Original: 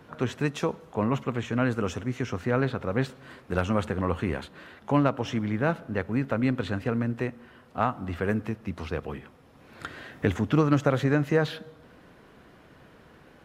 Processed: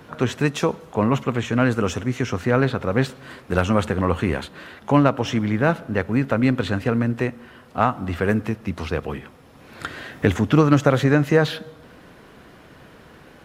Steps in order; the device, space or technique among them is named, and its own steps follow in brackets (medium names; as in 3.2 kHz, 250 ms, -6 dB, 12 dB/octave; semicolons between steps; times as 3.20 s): exciter from parts (in parallel at -5.5 dB: high-pass 4.1 kHz 6 dB/octave + saturation -36.5 dBFS, distortion -9 dB); on the sum: trim +6.5 dB